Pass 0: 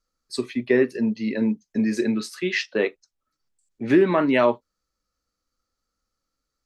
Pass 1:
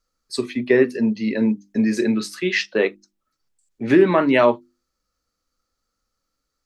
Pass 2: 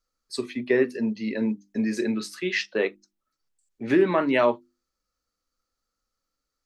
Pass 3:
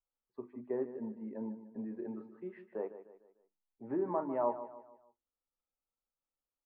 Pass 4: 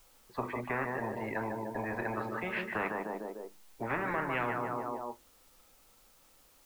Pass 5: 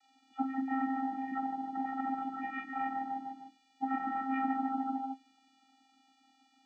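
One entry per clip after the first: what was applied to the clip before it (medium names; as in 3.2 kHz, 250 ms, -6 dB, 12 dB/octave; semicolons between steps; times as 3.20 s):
hum notches 50/100/150/200/250/300/350 Hz; trim +3.5 dB
peaking EQ 110 Hz -3 dB 2.2 oct; trim -5 dB
four-pole ladder low-pass 1 kHz, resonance 60%; on a send: feedback delay 150 ms, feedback 41%, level -12.5 dB; on the sum: trim -5.5 dB
spectrum-flattening compressor 10:1
knee-point frequency compression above 1.2 kHz 1.5:1; cabinet simulation 190–6200 Hz, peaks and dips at 320 Hz -9 dB, 660 Hz +9 dB, 2.3 kHz +6 dB, 3.4 kHz +5 dB, 5 kHz -3 dB; vocoder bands 16, square 266 Hz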